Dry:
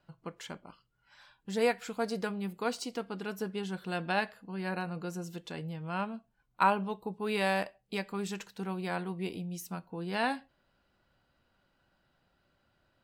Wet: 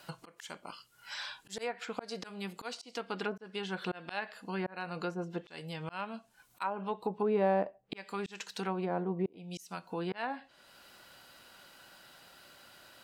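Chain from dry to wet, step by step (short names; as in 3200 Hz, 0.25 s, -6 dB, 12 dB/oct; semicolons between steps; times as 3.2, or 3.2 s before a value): RIAA curve recording; auto swell 0.755 s; in parallel at +2.5 dB: compressor 6:1, threshold -55 dBFS, peak gain reduction 28 dB; on the sum: treble ducked by the level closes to 540 Hz, closed at -36 dBFS; gain +9 dB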